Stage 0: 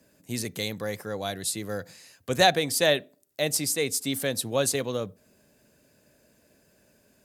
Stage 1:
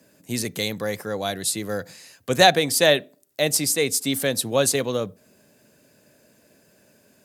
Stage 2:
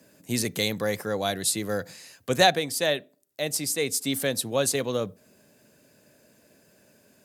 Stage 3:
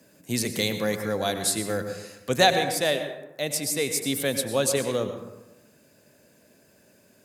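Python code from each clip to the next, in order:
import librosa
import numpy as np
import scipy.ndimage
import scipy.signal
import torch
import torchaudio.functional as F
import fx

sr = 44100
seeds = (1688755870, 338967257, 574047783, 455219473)

y1 = scipy.signal.sosfilt(scipy.signal.butter(2, 100.0, 'highpass', fs=sr, output='sos'), x)
y1 = F.gain(torch.from_numpy(y1), 5.0).numpy()
y2 = fx.rider(y1, sr, range_db=4, speed_s=0.5)
y2 = F.gain(torch.from_numpy(y2), -4.0).numpy()
y3 = fx.rev_plate(y2, sr, seeds[0], rt60_s=1.0, hf_ratio=0.45, predelay_ms=85, drr_db=7.0)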